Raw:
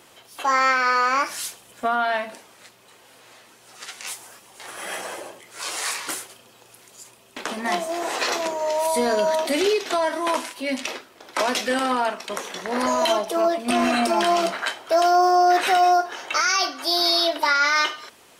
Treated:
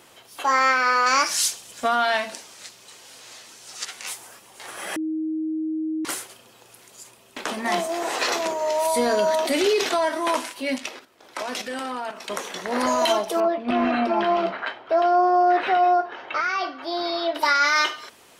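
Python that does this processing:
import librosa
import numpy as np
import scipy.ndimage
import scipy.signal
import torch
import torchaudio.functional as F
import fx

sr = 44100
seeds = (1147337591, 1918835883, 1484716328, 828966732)

y = fx.peak_eq(x, sr, hz=5900.0, db=11.5, octaves=1.8, at=(1.06, 3.85))
y = fx.sustainer(y, sr, db_per_s=63.0, at=(7.44, 9.94))
y = fx.level_steps(y, sr, step_db=10, at=(10.78, 12.21))
y = fx.air_absorb(y, sr, metres=350.0, at=(13.4, 17.35))
y = fx.edit(y, sr, fx.bleep(start_s=4.96, length_s=1.09, hz=315.0, db=-23.5), tone=tone)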